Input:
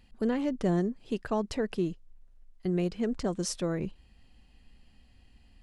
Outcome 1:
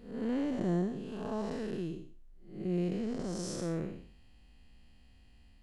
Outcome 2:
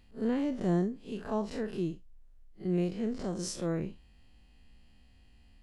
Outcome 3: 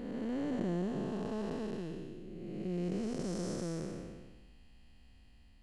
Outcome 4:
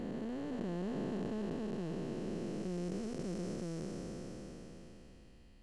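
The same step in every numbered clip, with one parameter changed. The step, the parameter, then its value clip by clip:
spectral blur, width: 257 ms, 93 ms, 629 ms, 1770 ms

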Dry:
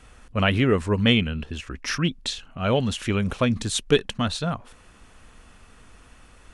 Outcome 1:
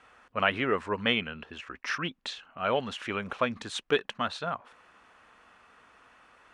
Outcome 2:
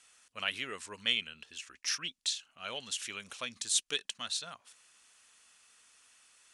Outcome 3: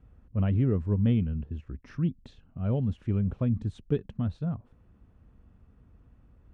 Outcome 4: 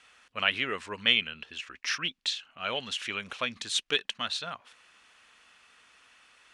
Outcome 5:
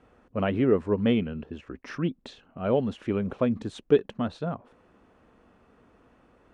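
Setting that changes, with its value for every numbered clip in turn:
band-pass filter, frequency: 1.2 kHz, 7.6 kHz, 100 Hz, 3 kHz, 390 Hz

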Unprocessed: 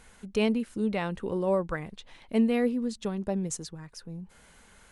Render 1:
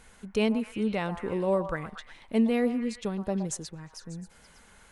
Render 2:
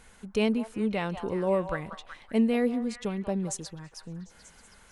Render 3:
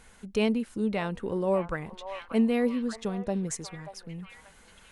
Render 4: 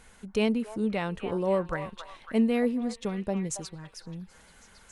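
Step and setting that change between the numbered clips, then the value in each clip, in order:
repeats whose band climbs or falls, time: 118 ms, 187 ms, 584 ms, 276 ms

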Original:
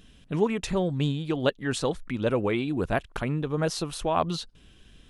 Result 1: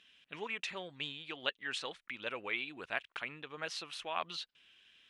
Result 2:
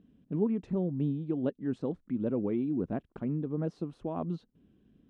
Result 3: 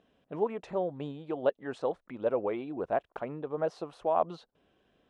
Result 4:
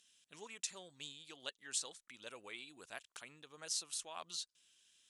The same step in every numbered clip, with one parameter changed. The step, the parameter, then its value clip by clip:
band-pass filter, frequency: 2.5 kHz, 240 Hz, 650 Hz, 7.4 kHz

